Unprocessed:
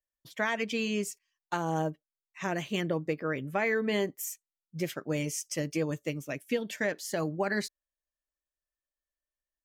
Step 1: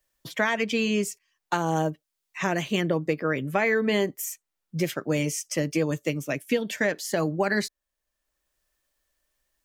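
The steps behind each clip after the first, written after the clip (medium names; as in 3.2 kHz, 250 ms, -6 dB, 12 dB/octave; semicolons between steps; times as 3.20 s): three bands compressed up and down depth 40%; trim +5.5 dB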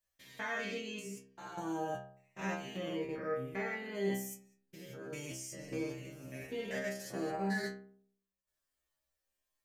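spectrogram pixelated in time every 200 ms; level held to a coarse grid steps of 10 dB; inharmonic resonator 64 Hz, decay 0.7 s, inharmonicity 0.002; trim +5 dB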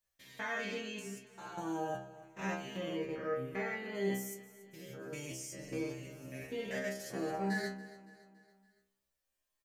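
feedback delay 282 ms, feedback 49%, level -17.5 dB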